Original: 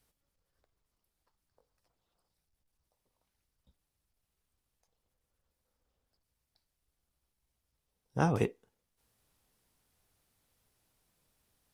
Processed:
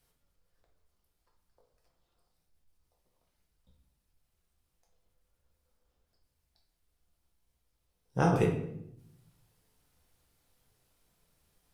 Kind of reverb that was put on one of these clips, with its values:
rectangular room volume 180 cubic metres, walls mixed, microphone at 0.88 metres

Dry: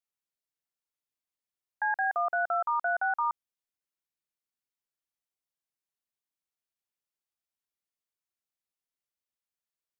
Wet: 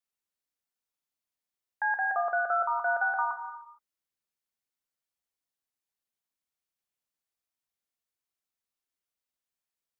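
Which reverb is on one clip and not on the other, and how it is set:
reverb whose tail is shaped and stops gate 490 ms falling, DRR 6 dB

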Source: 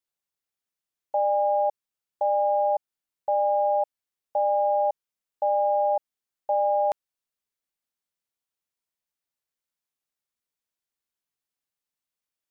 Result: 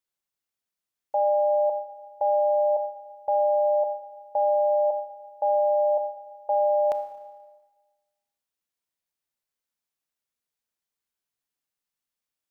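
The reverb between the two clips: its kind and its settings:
four-comb reverb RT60 1.3 s, combs from 25 ms, DRR 9.5 dB

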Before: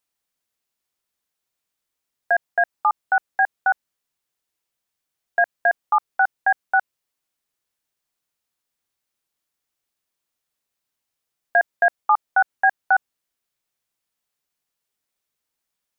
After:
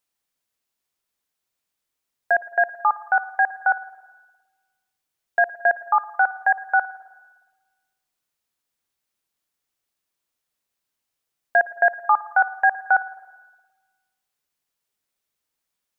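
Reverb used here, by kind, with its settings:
spring reverb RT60 1.3 s, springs 52/56 ms, chirp 35 ms, DRR 15.5 dB

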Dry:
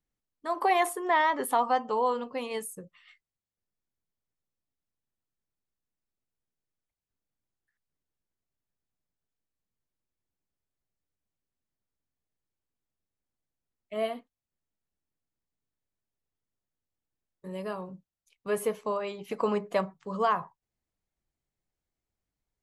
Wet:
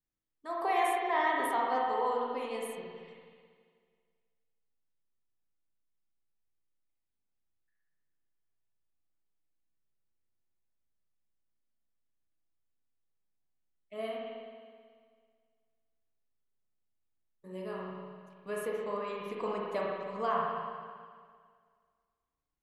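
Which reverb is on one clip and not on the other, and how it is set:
spring reverb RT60 1.9 s, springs 35/54 ms, chirp 30 ms, DRR −3.5 dB
level −8.5 dB

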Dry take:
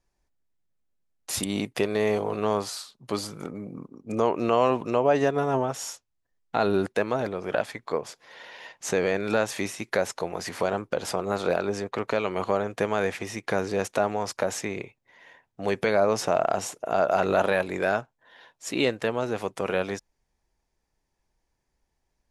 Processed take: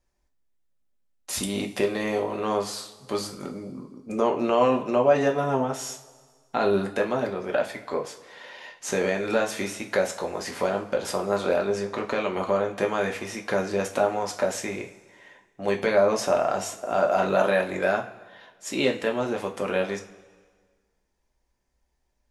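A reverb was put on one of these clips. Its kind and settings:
coupled-rooms reverb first 0.3 s, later 1.6 s, from −17 dB, DRR 1.5 dB
level −1.5 dB

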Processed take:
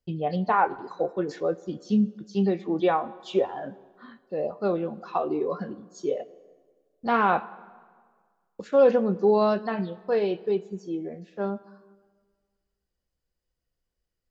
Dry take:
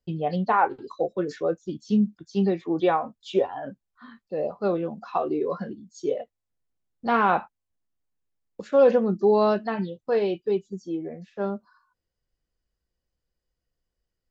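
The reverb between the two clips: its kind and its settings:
dense smooth reverb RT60 1.7 s, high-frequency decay 0.75×, DRR 17.5 dB
level −1 dB

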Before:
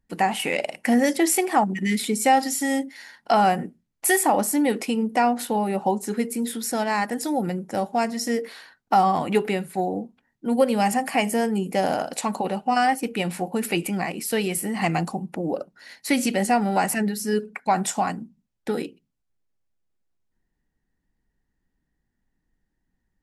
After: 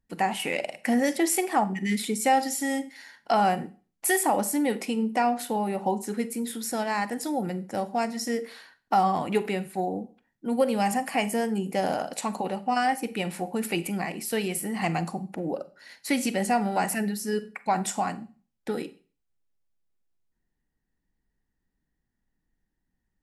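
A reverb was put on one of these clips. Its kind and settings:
four-comb reverb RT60 0.38 s, combs from 32 ms, DRR 14.5 dB
level −4 dB

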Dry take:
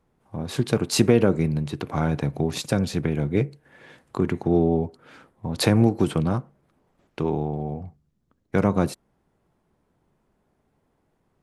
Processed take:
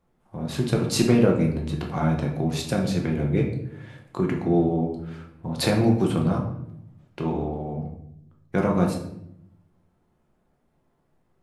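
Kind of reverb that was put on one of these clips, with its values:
rectangular room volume 180 cubic metres, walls mixed, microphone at 0.91 metres
level −3.5 dB

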